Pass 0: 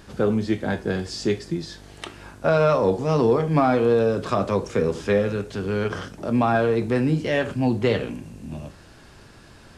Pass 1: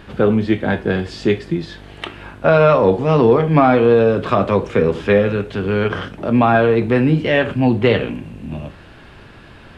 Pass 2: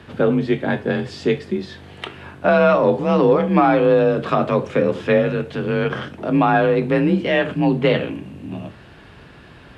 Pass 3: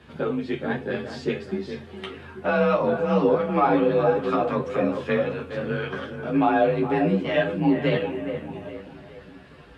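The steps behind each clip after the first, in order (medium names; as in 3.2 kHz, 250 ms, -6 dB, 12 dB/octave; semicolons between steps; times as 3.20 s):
resonant high shelf 4.2 kHz -10.5 dB, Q 1.5; trim +6.5 dB
frequency shift +34 Hz; trim -2.5 dB
feedback comb 55 Hz, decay 0.21 s, harmonics odd, mix 80%; feedback echo behind a low-pass 417 ms, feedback 43%, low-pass 2.1 kHz, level -8.5 dB; three-phase chorus; trim +3.5 dB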